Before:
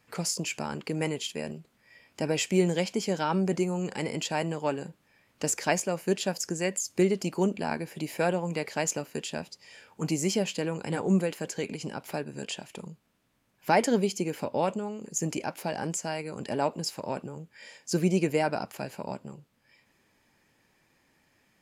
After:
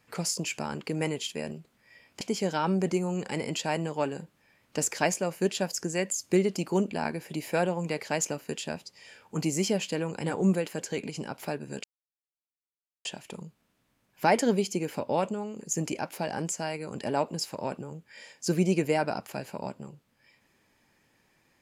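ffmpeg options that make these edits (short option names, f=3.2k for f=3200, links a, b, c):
-filter_complex "[0:a]asplit=3[a][b][c];[a]atrim=end=2.212[d];[b]atrim=start=2.868:end=12.5,asetpts=PTS-STARTPTS,afade=t=out:st=9.628:d=0.004:c=hsin,apad=pad_dur=1.21[e];[c]atrim=start=12.5,asetpts=PTS-STARTPTS,afade=t=in:d=0.004:c=hsin[f];[e][f]concat=n=2:v=0:a=1[g];[d][g]acrossfade=d=0.004:c1=hsin:c2=hsin"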